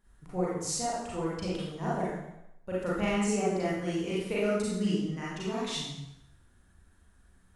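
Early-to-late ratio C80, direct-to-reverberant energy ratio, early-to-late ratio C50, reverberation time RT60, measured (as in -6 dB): 2.0 dB, -8.5 dB, -2.0 dB, 0.85 s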